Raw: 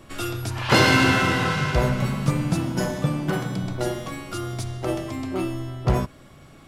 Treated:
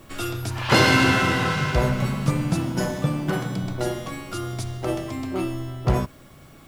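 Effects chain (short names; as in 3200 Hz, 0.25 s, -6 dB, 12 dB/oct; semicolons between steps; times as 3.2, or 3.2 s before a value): added noise blue -61 dBFS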